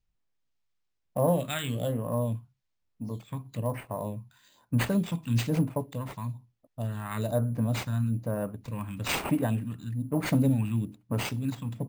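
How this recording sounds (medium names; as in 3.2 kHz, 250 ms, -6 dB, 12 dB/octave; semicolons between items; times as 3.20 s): phasing stages 2, 1.1 Hz, lowest notch 500–3800 Hz; aliases and images of a low sample rate 11 kHz, jitter 0%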